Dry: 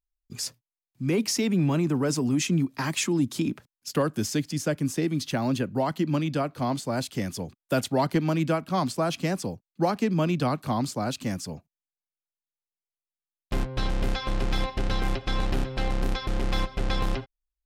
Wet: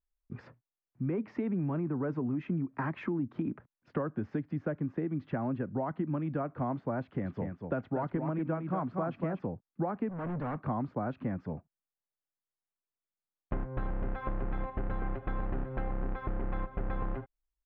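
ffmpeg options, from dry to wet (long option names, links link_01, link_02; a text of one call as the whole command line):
ffmpeg -i in.wav -filter_complex "[0:a]asplit=3[link_01][link_02][link_03];[link_01]afade=type=out:start_time=7.24:duration=0.02[link_04];[link_02]aecho=1:1:238:0.422,afade=type=in:start_time=7.24:duration=0.02,afade=type=out:start_time=9.45:duration=0.02[link_05];[link_03]afade=type=in:start_time=9.45:duration=0.02[link_06];[link_04][link_05][link_06]amix=inputs=3:normalize=0,asettb=1/sr,asplit=3[link_07][link_08][link_09];[link_07]atrim=end=10.094[link_10];[link_08]atrim=start=10.09:end=10.66,asetpts=PTS-STARTPTS,afade=type=in:duration=0.004:curve=qsin,afade=type=out:start_time=0.566:duration=0.004:curve=qsin,volume=33dB,asoftclip=hard,volume=-33dB[link_11];[link_09]atrim=start=10.656[link_12];[link_10][link_11]acrossfade=duration=0.004:curve1=hsin:curve2=qsin[link_13];[link_13][link_12]acrossfade=duration=0.004:curve1=qsin:curve2=hsin,lowpass=frequency=1700:width=0.5412,lowpass=frequency=1700:width=1.3066,acompressor=threshold=-30dB:ratio=5" out.wav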